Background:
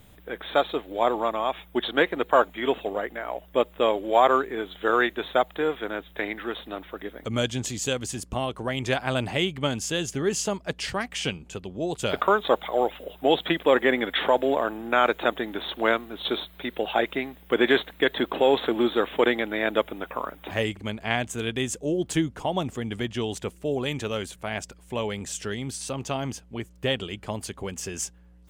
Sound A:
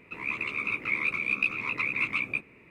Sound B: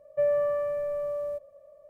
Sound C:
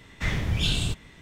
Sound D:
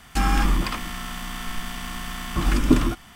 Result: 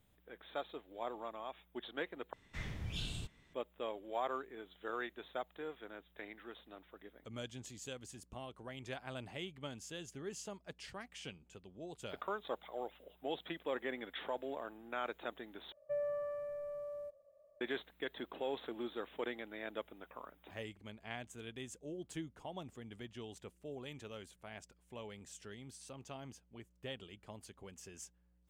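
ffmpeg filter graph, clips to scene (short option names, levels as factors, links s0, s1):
-filter_complex "[0:a]volume=0.106,asplit=3[s0][s1][s2];[s0]atrim=end=2.334[s3];[3:a]atrim=end=1.21,asetpts=PTS-STARTPTS,volume=0.15[s4];[s1]atrim=start=3.536:end=15.724[s5];[2:a]atrim=end=1.89,asetpts=PTS-STARTPTS,volume=0.224[s6];[s2]atrim=start=17.606[s7];[s3][s4]acrossfade=d=0.004:c1=hsin:c2=hsin[s8];[s8][s5]acrossfade=d=0.004:c1=hsin:c2=hsin[s9];[s9][s6]acrossfade=d=0.004:c1=hsin:c2=hsin[s10];[s10][s7]acrossfade=d=0.004:c1=hsin:c2=hsin"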